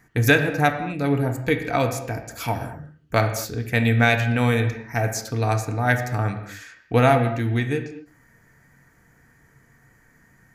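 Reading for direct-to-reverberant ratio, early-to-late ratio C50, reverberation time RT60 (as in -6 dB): 5.5 dB, 9.0 dB, no single decay rate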